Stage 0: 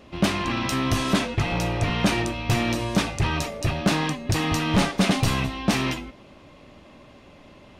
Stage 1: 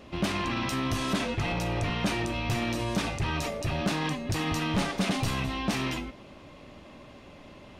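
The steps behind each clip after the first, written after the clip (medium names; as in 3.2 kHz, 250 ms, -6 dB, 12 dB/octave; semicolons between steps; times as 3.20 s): peak limiter -21.5 dBFS, peak gain reduction 7.5 dB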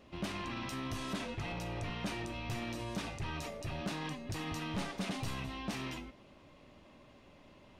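feedback comb 960 Hz, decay 0.35 s; trim -2.5 dB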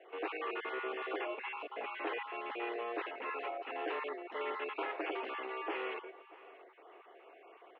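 random holes in the spectrogram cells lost 22%; delay 631 ms -20 dB; mistuned SSB +120 Hz 260–2600 Hz; trim +4.5 dB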